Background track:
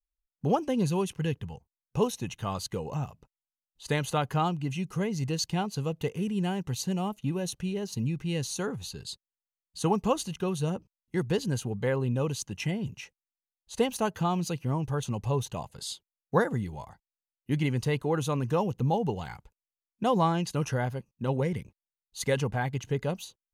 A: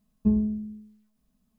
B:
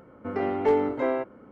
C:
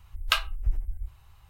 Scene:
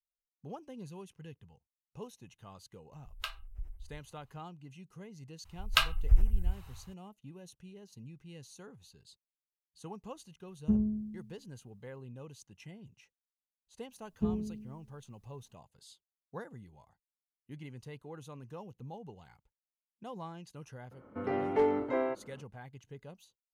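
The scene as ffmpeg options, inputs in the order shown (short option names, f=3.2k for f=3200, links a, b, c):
-filter_complex "[3:a]asplit=2[a][b];[1:a]asplit=2[c][d];[0:a]volume=-19dB[e];[b]dynaudnorm=f=110:g=5:m=10dB[f];[c]equalizer=f=130:w=1.5:g=7.5[g];[d]aecho=1:1:7.1:0.55[h];[a]atrim=end=1.49,asetpts=PTS-STARTPTS,volume=-15.5dB,afade=t=in:d=0.004:c=hsin,afade=t=out:st=1.486:d=0.004:c=hsin,adelay=2920[i];[f]atrim=end=1.49,asetpts=PTS-STARTPTS,volume=-5dB,afade=t=in:d=0.004:c=hsin,afade=t=out:st=1.486:d=0.004:c=hsin,adelay=240345S[j];[g]atrim=end=1.58,asetpts=PTS-STARTPTS,volume=-8dB,afade=t=in:d=0.004:c=hsin,afade=t=out:st=1.576:d=0.004:c=hsin,adelay=10430[k];[h]atrim=end=1.58,asetpts=PTS-STARTPTS,volume=-4dB,afade=t=in:d=0.004:c=hsin,afade=t=out:st=1.576:d=0.004:c=hsin,adelay=13970[l];[2:a]atrim=end=1.51,asetpts=PTS-STARTPTS,volume=-5.5dB,afade=t=in:d=0.004:c=hsin,afade=t=out:st=1.506:d=0.004:c=hsin,adelay=20910[m];[e][i][j][k][l][m]amix=inputs=6:normalize=0"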